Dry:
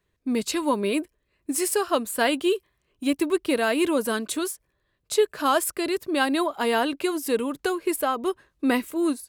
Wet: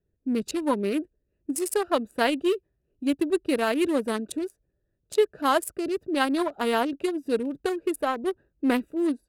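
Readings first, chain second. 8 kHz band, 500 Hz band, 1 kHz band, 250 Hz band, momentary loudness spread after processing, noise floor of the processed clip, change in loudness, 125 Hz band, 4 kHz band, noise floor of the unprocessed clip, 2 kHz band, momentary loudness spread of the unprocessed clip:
-7.0 dB, -1.5 dB, -1.5 dB, -1.0 dB, 7 LU, -76 dBFS, -1.5 dB, no reading, -4.0 dB, -74 dBFS, -3.5 dB, 7 LU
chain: local Wiener filter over 41 samples

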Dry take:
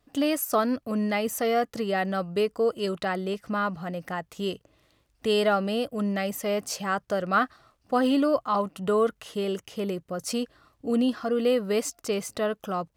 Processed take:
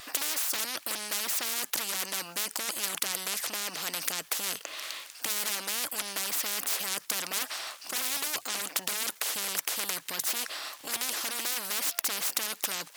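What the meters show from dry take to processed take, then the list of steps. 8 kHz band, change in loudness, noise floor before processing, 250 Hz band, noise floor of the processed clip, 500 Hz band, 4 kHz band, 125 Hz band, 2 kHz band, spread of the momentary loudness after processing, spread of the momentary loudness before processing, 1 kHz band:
+10.0 dB, -3.0 dB, -70 dBFS, -21.5 dB, -52 dBFS, -19.0 dB, +5.0 dB, -19.0 dB, -1.0 dB, 4 LU, 8 LU, -10.5 dB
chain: sine folder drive 11 dB, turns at -11.5 dBFS; Bessel high-pass 1.8 kHz, order 2; spectrum-flattening compressor 10:1; trim +3.5 dB

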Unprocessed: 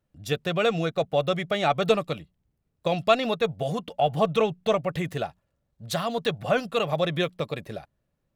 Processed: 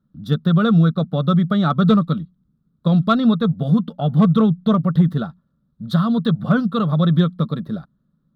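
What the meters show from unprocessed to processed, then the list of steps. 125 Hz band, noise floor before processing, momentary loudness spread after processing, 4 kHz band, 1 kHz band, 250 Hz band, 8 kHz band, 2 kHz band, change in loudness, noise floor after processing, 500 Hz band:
+15.5 dB, -77 dBFS, 10 LU, 0.0 dB, +2.5 dB, +16.0 dB, under -10 dB, -1.0 dB, +8.5 dB, -68 dBFS, -1.0 dB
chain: FFT filter 110 Hz 0 dB, 160 Hz +14 dB, 230 Hz +15 dB, 330 Hz +1 dB, 790 Hz -9 dB, 1.3 kHz +7 dB, 2.5 kHz -23 dB, 3.6 kHz 0 dB, 6.9 kHz -19 dB, 12 kHz -11 dB; in parallel at -8 dB: wavefolder -10 dBFS

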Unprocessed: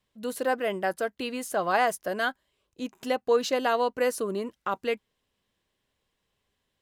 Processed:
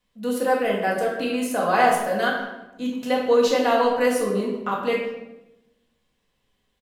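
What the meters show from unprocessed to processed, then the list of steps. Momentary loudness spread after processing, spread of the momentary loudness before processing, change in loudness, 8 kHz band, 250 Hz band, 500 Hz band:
11 LU, 9 LU, +6.0 dB, +4.0 dB, +9.0 dB, +6.0 dB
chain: speakerphone echo 160 ms, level -16 dB; simulated room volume 370 m³, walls mixed, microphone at 1.9 m

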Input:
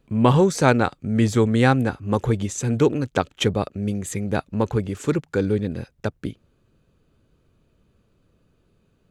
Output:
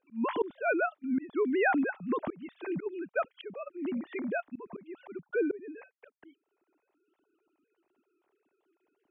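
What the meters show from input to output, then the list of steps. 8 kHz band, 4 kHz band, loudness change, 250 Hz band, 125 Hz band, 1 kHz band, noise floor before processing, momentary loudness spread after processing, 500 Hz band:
under -40 dB, -21.0 dB, -10.5 dB, -12.0 dB, -30.0 dB, -10.0 dB, -65 dBFS, 17 LU, -10.0 dB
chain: formants replaced by sine waves; peaking EQ 500 Hz -6.5 dB 0.24 oct; slow attack 397 ms; trim -5.5 dB

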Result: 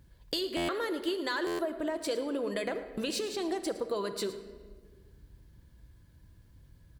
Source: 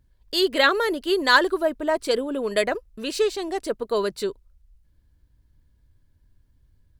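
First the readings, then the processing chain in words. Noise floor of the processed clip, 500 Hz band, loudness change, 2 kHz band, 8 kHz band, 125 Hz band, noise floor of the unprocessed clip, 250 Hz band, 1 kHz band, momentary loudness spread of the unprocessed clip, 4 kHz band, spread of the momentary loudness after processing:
-59 dBFS, -10.0 dB, -10.5 dB, -15.5 dB, -5.0 dB, no reading, -63 dBFS, -6.0 dB, -13.5 dB, 11 LU, -10.5 dB, 4 LU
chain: high-pass 52 Hz 12 dB/octave; in parallel at 0 dB: gain riding; on the sum: peak limiter -10.5 dBFS, peak gain reduction 11 dB; compression 6:1, threshold -32 dBFS, peak gain reduction 16.5 dB; delay 111 ms -16.5 dB; simulated room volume 1900 m³, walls mixed, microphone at 0.75 m; buffer glitch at 0.56/1.46 s, samples 512, times 10

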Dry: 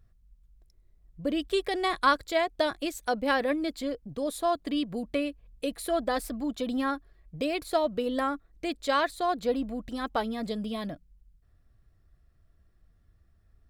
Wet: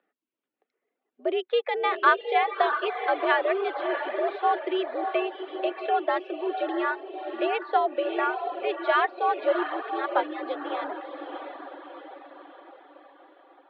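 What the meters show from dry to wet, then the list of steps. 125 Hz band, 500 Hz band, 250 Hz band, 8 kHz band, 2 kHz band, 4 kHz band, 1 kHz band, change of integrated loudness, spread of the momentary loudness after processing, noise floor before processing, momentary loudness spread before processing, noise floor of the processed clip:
under -30 dB, +3.5 dB, -3.5 dB, under -35 dB, +5.5 dB, -1.5 dB, +6.0 dB, +3.0 dB, 14 LU, -64 dBFS, 9 LU, -85 dBFS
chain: mistuned SSB +82 Hz 260–3100 Hz; echo that smears into a reverb 686 ms, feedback 51%, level -6 dB; reverb removal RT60 0.67 s; trim +3.5 dB

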